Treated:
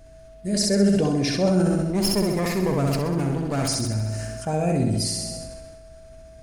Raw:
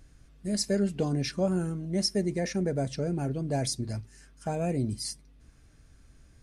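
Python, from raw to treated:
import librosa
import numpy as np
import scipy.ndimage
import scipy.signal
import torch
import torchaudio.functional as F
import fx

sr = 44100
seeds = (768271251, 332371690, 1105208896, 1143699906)

y = fx.lower_of_two(x, sr, delay_ms=0.44, at=(1.9, 3.68))
y = y + 10.0 ** (-56.0 / 20.0) * np.sin(2.0 * np.pi * 650.0 * np.arange(len(y)) / sr)
y = fx.room_flutter(y, sr, wall_m=11.1, rt60_s=0.87)
y = fx.rev_schroeder(y, sr, rt60_s=2.5, comb_ms=32, drr_db=19.5)
y = fx.sustainer(y, sr, db_per_s=27.0)
y = y * 10.0 ** (4.5 / 20.0)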